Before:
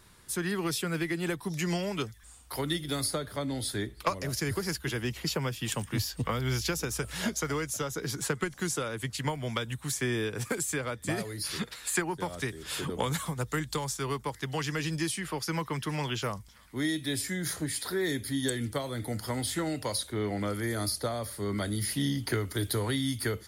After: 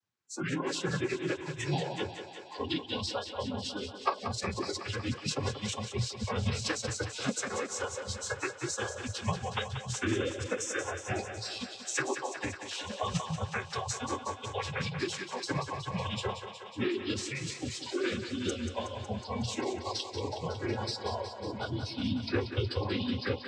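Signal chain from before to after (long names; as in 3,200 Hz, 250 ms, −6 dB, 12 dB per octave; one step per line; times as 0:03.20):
cochlear-implant simulation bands 12
noise reduction from a noise print of the clip's start 29 dB
phase-vocoder pitch shift with formants kept −2.5 semitones
on a send: feedback echo with a high-pass in the loop 184 ms, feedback 75%, high-pass 250 Hz, level −9 dB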